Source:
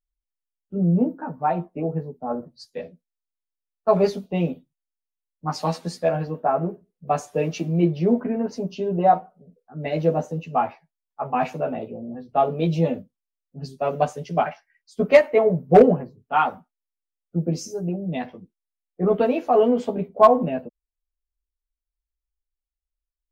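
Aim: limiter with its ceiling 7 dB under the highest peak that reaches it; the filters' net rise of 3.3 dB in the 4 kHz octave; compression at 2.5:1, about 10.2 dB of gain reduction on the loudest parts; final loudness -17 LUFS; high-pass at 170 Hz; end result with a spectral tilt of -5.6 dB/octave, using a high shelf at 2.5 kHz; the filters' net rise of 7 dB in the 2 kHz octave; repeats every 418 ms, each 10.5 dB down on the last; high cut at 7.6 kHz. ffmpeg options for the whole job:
-af "highpass=170,lowpass=7600,equalizer=f=2000:t=o:g=9,highshelf=f=2500:g=-3.5,equalizer=f=4000:t=o:g=4.5,acompressor=threshold=0.0794:ratio=2.5,alimiter=limit=0.168:level=0:latency=1,aecho=1:1:418|836|1254:0.299|0.0896|0.0269,volume=3.98"

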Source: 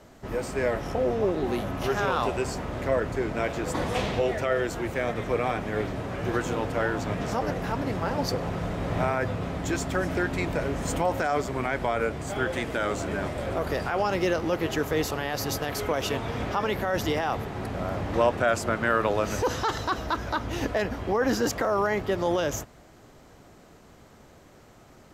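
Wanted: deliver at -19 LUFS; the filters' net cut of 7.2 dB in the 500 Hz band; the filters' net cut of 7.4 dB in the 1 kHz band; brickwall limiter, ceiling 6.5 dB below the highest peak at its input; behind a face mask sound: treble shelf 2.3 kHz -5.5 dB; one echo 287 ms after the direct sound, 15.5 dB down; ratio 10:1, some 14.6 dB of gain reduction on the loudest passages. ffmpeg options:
-af "equalizer=f=500:t=o:g=-7,equalizer=f=1000:t=o:g=-6.5,acompressor=threshold=0.01:ratio=10,alimiter=level_in=3.55:limit=0.0631:level=0:latency=1,volume=0.282,highshelf=f=2300:g=-5.5,aecho=1:1:287:0.168,volume=22.4"

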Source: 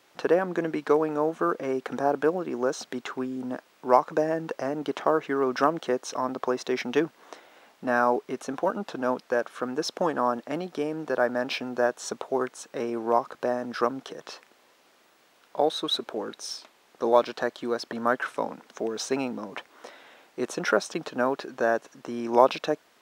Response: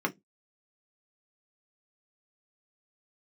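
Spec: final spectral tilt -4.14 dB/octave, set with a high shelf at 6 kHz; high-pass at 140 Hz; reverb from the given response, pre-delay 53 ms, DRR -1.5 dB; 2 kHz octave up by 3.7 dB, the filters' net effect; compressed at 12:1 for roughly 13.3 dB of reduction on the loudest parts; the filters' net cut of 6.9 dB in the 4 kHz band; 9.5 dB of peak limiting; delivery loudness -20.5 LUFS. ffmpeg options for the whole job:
-filter_complex "[0:a]highpass=140,equalizer=f=2000:t=o:g=7.5,equalizer=f=4000:t=o:g=-7.5,highshelf=f=6000:g=-8.5,acompressor=threshold=0.0562:ratio=12,alimiter=limit=0.0944:level=0:latency=1,asplit=2[s0][s1];[1:a]atrim=start_sample=2205,adelay=53[s2];[s1][s2]afir=irnorm=-1:irlink=0,volume=0.473[s3];[s0][s3]amix=inputs=2:normalize=0,volume=2.66"

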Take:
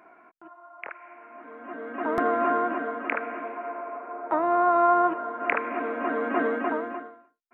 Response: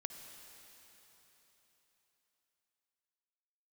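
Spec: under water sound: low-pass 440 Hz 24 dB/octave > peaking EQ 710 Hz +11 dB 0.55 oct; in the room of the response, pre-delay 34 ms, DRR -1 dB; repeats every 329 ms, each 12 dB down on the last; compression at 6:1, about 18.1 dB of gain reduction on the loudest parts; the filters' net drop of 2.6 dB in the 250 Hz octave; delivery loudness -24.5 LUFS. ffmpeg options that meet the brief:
-filter_complex "[0:a]equalizer=f=250:t=o:g=-4,acompressor=threshold=0.0126:ratio=6,aecho=1:1:329|658|987:0.251|0.0628|0.0157,asplit=2[s0][s1];[1:a]atrim=start_sample=2205,adelay=34[s2];[s1][s2]afir=irnorm=-1:irlink=0,volume=1.5[s3];[s0][s3]amix=inputs=2:normalize=0,lowpass=f=440:w=0.5412,lowpass=f=440:w=1.3066,equalizer=f=710:t=o:w=0.55:g=11,volume=8.91"

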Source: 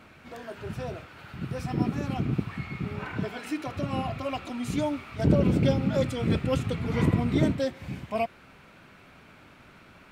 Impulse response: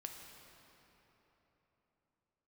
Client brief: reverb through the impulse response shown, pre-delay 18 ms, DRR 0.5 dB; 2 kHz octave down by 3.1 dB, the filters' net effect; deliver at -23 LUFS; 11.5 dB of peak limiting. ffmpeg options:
-filter_complex "[0:a]equalizer=f=2000:t=o:g=-4,alimiter=limit=0.0891:level=0:latency=1,asplit=2[s0][s1];[1:a]atrim=start_sample=2205,adelay=18[s2];[s1][s2]afir=irnorm=-1:irlink=0,volume=1.41[s3];[s0][s3]amix=inputs=2:normalize=0,volume=2.11"

